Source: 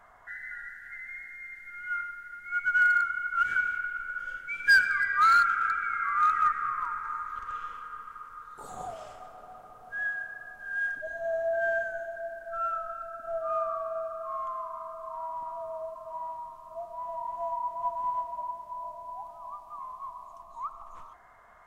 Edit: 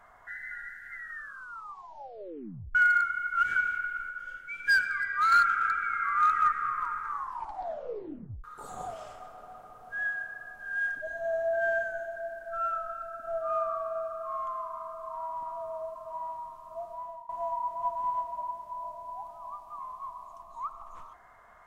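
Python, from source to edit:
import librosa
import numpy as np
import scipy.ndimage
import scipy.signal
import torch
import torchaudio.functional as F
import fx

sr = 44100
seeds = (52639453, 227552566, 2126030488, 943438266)

y = fx.edit(x, sr, fx.tape_stop(start_s=0.9, length_s=1.85),
    fx.clip_gain(start_s=4.09, length_s=1.23, db=-4.0),
    fx.tape_stop(start_s=7.06, length_s=1.38),
    fx.fade_out_to(start_s=16.92, length_s=0.37, floor_db=-19.5), tone=tone)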